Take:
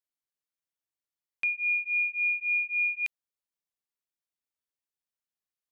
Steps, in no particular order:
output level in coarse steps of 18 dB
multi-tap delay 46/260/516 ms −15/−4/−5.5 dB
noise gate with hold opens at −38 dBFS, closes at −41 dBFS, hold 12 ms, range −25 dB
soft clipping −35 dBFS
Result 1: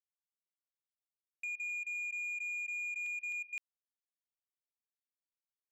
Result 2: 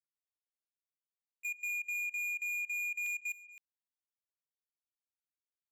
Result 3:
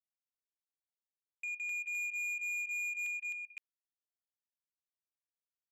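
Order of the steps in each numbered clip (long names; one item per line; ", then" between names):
noise gate with hold, then multi-tap delay, then output level in coarse steps, then soft clipping
noise gate with hold, then soft clipping, then multi-tap delay, then output level in coarse steps
output level in coarse steps, then multi-tap delay, then noise gate with hold, then soft clipping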